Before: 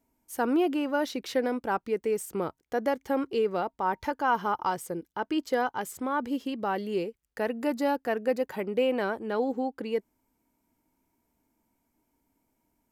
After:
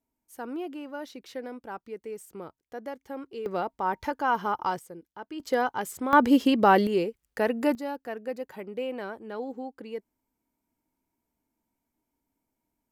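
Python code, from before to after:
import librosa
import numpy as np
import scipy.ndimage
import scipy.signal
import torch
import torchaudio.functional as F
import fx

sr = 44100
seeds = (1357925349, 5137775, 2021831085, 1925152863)

y = fx.gain(x, sr, db=fx.steps((0.0, -10.0), (3.46, 0.0), (4.79, -9.5), (5.4, 1.5), (6.13, 11.0), (6.87, 4.0), (7.75, -7.0)))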